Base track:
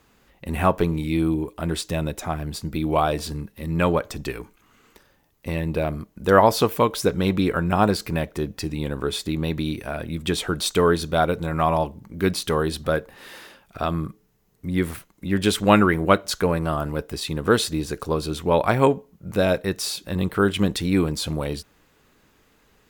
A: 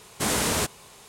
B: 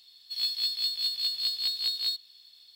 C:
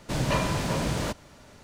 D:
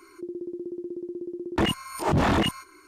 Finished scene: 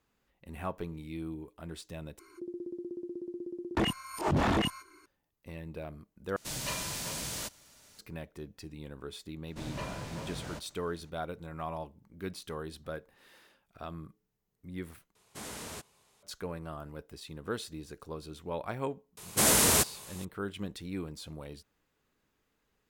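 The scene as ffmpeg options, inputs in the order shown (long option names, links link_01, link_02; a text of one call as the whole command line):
ffmpeg -i bed.wav -i cue0.wav -i cue1.wav -i cue2.wav -i cue3.wav -filter_complex "[3:a]asplit=2[link_01][link_02];[1:a]asplit=2[link_03][link_04];[0:a]volume=-17.5dB[link_05];[link_01]crystalizer=i=7.5:c=0[link_06];[link_04]highshelf=frequency=7700:gain=10.5[link_07];[link_05]asplit=4[link_08][link_09][link_10][link_11];[link_08]atrim=end=2.194[link_12];[4:a]atrim=end=2.87,asetpts=PTS-STARTPTS,volume=-5.5dB[link_13];[link_09]atrim=start=5.056:end=6.364[link_14];[link_06]atrim=end=1.63,asetpts=PTS-STARTPTS,volume=-16dB[link_15];[link_10]atrim=start=7.986:end=15.154[link_16];[link_03]atrim=end=1.08,asetpts=PTS-STARTPTS,volume=-18dB[link_17];[link_11]atrim=start=16.226[link_18];[link_02]atrim=end=1.63,asetpts=PTS-STARTPTS,volume=-13.5dB,afade=type=in:duration=0.004:curve=hsin,afade=type=out:start_time=1.626:duration=0.004:curve=hsin,adelay=9470[link_19];[link_07]atrim=end=1.08,asetpts=PTS-STARTPTS,volume=-2dB,afade=type=in:duration=0.004:curve=hsin,afade=type=out:start_time=1.076:duration=0.004:curve=hsin,adelay=19170[link_20];[link_12][link_13]acrossfade=duration=0.004:curve1=hsin:curve2=hsin[link_21];[link_21][link_14]acrossfade=duration=0.004:curve1=hsin:curve2=hsin[link_22];[link_22][link_15]acrossfade=duration=0.004:curve1=hsin:curve2=hsin[link_23];[link_23][link_16]acrossfade=duration=0.004:curve1=hsin:curve2=hsin[link_24];[link_24][link_17]acrossfade=duration=0.004:curve1=hsin:curve2=hsin[link_25];[link_25][link_18]acrossfade=duration=0.004:curve1=hsin:curve2=hsin[link_26];[link_26][link_19][link_20]amix=inputs=3:normalize=0" out.wav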